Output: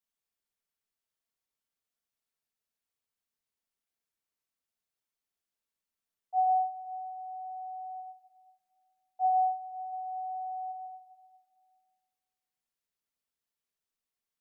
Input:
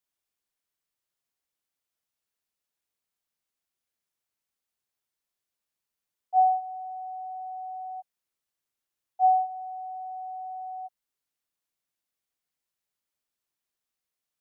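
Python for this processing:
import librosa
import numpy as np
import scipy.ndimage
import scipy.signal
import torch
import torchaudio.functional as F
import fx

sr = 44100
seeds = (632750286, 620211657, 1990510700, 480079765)

y = fx.peak_eq(x, sr, hz=640.0, db=12.5, octaves=0.26, at=(9.92, 10.71), fade=0.02)
y = fx.room_shoebox(y, sr, seeds[0], volume_m3=2400.0, walls='mixed', distance_m=1.6)
y = y * 10.0 ** (-6.0 / 20.0)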